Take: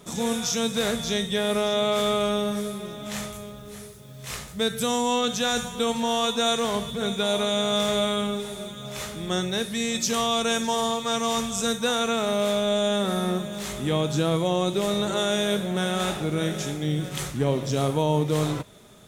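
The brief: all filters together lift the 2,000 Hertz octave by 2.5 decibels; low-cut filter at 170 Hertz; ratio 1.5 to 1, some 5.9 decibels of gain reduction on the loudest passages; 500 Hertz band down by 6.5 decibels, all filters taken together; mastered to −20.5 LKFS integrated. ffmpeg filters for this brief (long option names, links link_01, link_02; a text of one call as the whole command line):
ffmpeg -i in.wav -af "highpass=170,equalizer=frequency=500:width_type=o:gain=-8.5,equalizer=frequency=2000:width_type=o:gain=4,acompressor=threshold=-38dB:ratio=1.5,volume=11.5dB" out.wav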